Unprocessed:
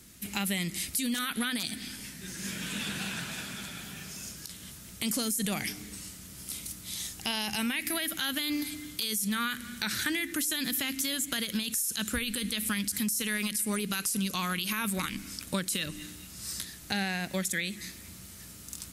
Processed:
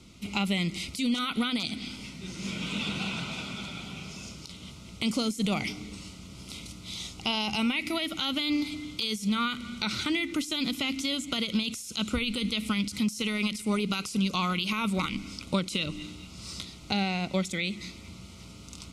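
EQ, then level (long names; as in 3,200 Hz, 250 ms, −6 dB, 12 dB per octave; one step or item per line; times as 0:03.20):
Butterworth band-reject 1,700 Hz, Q 2.7
low-pass filter 4,200 Hz 12 dB per octave
+4.5 dB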